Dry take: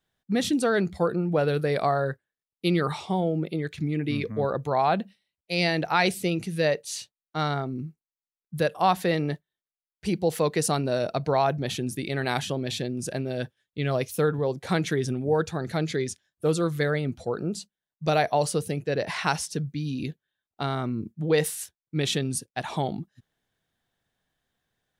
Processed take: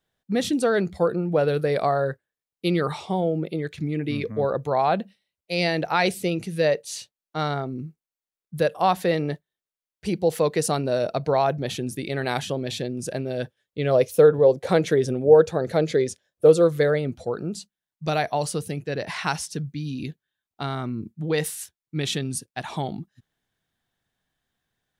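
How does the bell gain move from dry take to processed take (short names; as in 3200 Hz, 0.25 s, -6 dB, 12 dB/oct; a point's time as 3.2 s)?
bell 520 Hz 0.79 oct
13.38 s +4 dB
14.07 s +13.5 dB
16.57 s +13.5 dB
17.25 s +3.5 dB
17.49 s -3 dB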